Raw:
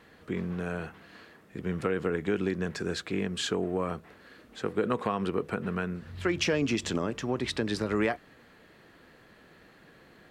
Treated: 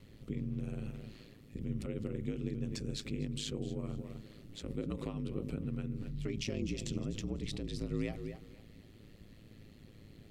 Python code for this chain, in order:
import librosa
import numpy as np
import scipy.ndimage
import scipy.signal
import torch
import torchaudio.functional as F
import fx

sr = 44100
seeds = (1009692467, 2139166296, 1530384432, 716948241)

p1 = fx.tone_stack(x, sr, knobs='10-0-1')
p2 = fx.echo_feedback(p1, sr, ms=247, feedback_pct=24, wet_db=-14.5)
p3 = fx.over_compress(p2, sr, threshold_db=-58.0, ratio=-1.0)
p4 = p2 + (p3 * librosa.db_to_amplitude(-1.0))
p5 = fx.peak_eq(p4, sr, hz=1600.0, db=-13.5, octaves=0.25)
p6 = p5 * np.sin(2.0 * np.pi * 54.0 * np.arange(len(p5)) / sr)
y = p6 * librosa.db_to_amplitude(12.0)